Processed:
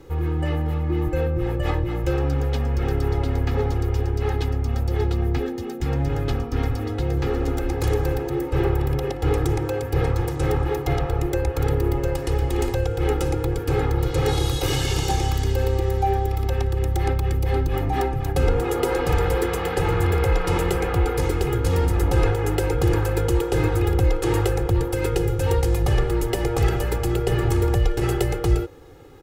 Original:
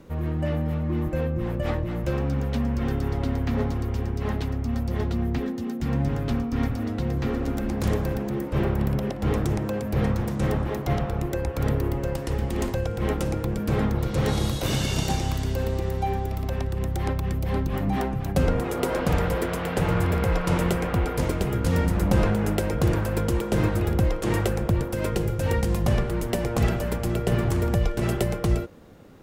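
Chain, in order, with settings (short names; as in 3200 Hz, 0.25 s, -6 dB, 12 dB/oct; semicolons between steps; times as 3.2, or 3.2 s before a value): in parallel at +1 dB: limiter -17 dBFS, peak gain reduction 9 dB; on the sum: comb 2.4 ms, depth 97%; gain -5.5 dB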